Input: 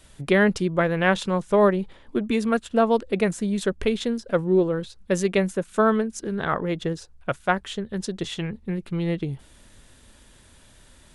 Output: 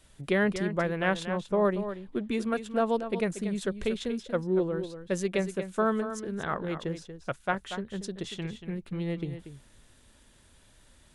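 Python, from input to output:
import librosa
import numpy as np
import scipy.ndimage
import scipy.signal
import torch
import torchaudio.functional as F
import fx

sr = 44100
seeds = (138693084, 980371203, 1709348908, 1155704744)

y = fx.high_shelf(x, sr, hz=2200.0, db=-11.5, at=(1.25, 1.65))
y = y + 10.0 ** (-10.5 / 20.0) * np.pad(y, (int(235 * sr / 1000.0), 0))[:len(y)]
y = y * 10.0 ** (-7.0 / 20.0)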